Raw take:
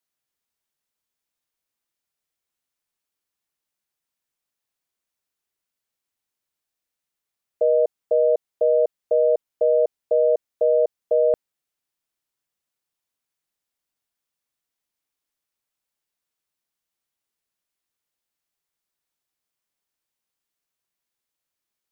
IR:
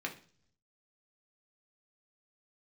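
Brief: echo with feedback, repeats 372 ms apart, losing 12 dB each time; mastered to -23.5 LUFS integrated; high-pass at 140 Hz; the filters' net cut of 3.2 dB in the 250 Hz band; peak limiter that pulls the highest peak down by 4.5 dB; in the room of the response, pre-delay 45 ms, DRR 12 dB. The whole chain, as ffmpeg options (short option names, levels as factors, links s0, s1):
-filter_complex "[0:a]highpass=140,equalizer=f=250:t=o:g=-5.5,alimiter=limit=0.15:level=0:latency=1,aecho=1:1:372|744|1116:0.251|0.0628|0.0157,asplit=2[s0][s1];[1:a]atrim=start_sample=2205,adelay=45[s2];[s1][s2]afir=irnorm=-1:irlink=0,volume=0.188[s3];[s0][s3]amix=inputs=2:normalize=0,volume=1.5"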